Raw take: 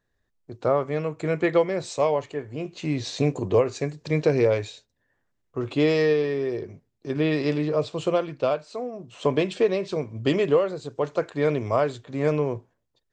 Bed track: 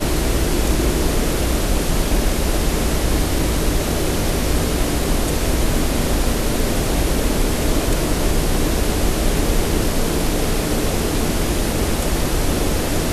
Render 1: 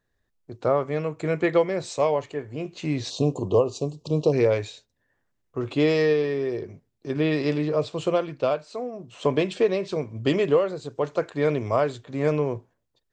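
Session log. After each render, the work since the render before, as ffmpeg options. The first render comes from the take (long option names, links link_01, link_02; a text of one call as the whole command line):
ffmpeg -i in.wav -filter_complex "[0:a]asplit=3[link_01][link_02][link_03];[link_01]afade=type=out:start_time=3.09:duration=0.02[link_04];[link_02]asuperstop=centerf=1800:order=12:qfactor=1.2,afade=type=in:start_time=3.09:duration=0.02,afade=type=out:start_time=4.32:duration=0.02[link_05];[link_03]afade=type=in:start_time=4.32:duration=0.02[link_06];[link_04][link_05][link_06]amix=inputs=3:normalize=0" out.wav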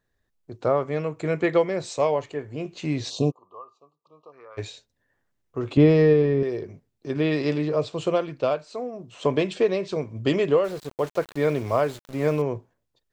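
ffmpeg -i in.wav -filter_complex "[0:a]asplit=3[link_01][link_02][link_03];[link_01]afade=type=out:start_time=3.3:duration=0.02[link_04];[link_02]bandpass=frequency=1200:width_type=q:width=12,afade=type=in:start_time=3.3:duration=0.02,afade=type=out:start_time=4.57:duration=0.02[link_05];[link_03]afade=type=in:start_time=4.57:duration=0.02[link_06];[link_04][link_05][link_06]amix=inputs=3:normalize=0,asettb=1/sr,asplit=3[link_07][link_08][link_09];[link_07]atrim=end=5.774[link_10];[link_08]atrim=start=5.77:end=6.43,asetpts=PTS-STARTPTS,afade=type=in:duration=0.004:curve=qsin,afade=type=out:start_time=0.656:duration=0.004:curve=qsin,aemphasis=mode=reproduction:type=riaa[link_11];[link_09]atrim=start=6.426[link_12];[link_10][link_11]acrossfade=duration=0.004:curve1=hsin:curve2=qsin[link_13];[link_13][link_12]acrossfade=duration=0.004:curve1=qsin:curve2=hsin,asettb=1/sr,asplit=3[link_14][link_15][link_16];[link_14]atrim=end=10.644[link_17];[link_15]atrim=start=10.64:end=12.42,asetpts=PTS-STARTPTS,afade=type=in:duration=0.004:curve=qsin,afade=type=out:start_time=1.776:duration=0.004:curve=qsin,aeval=exprs='val(0)*gte(abs(val(0)),0.0119)':channel_layout=same[link_18];[link_16]atrim=start=12.416[link_19];[link_17][link_18]acrossfade=duration=0.004:curve1=hsin:curve2=qsin[link_20];[link_20][link_19]acrossfade=duration=0.004:curve1=qsin:curve2=hsin" out.wav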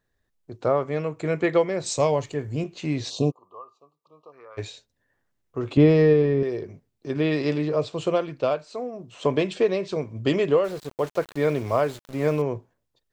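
ffmpeg -i in.wav -filter_complex "[0:a]asettb=1/sr,asplit=3[link_01][link_02][link_03];[link_01]atrim=end=1.864[link_04];[link_02]atrim=start=1.86:end=2.64,asetpts=PTS-STARTPTS,afade=type=in:duration=0.004:curve=qsin,afade=type=out:start_time=0.776:duration=0.004:curve=qsin,bass=frequency=250:gain=9,treble=frequency=4000:gain=10[link_05];[link_03]atrim=start=2.636[link_06];[link_04][link_05]acrossfade=duration=0.004:curve1=hsin:curve2=qsin[link_07];[link_07][link_06]acrossfade=duration=0.004:curve1=qsin:curve2=hsin" out.wav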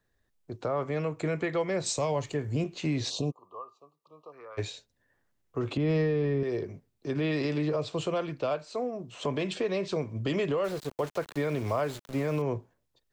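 ffmpeg -i in.wav -filter_complex "[0:a]acrossover=split=330|530|3100[link_01][link_02][link_03][link_04];[link_02]acompressor=threshold=-35dB:ratio=6[link_05];[link_01][link_05][link_03][link_04]amix=inputs=4:normalize=0,alimiter=limit=-20dB:level=0:latency=1:release=110" out.wav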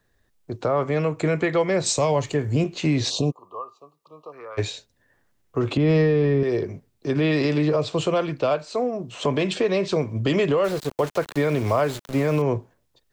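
ffmpeg -i in.wav -af "volume=8dB" out.wav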